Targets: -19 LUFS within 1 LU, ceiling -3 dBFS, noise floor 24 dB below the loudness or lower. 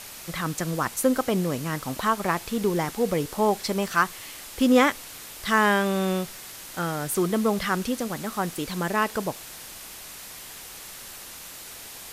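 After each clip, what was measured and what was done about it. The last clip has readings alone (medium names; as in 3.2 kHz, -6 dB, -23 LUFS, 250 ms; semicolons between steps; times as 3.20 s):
noise floor -42 dBFS; noise floor target -50 dBFS; loudness -25.5 LUFS; peak level -6.5 dBFS; loudness target -19.0 LUFS
-> noise print and reduce 8 dB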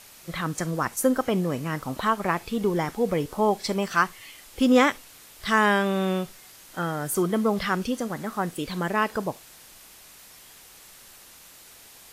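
noise floor -50 dBFS; loudness -25.5 LUFS; peak level -6.5 dBFS; loudness target -19.0 LUFS
-> trim +6.5 dB; peak limiter -3 dBFS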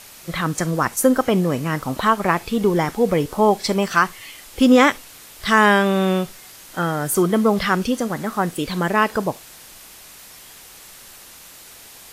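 loudness -19.0 LUFS; peak level -3.0 dBFS; noise floor -43 dBFS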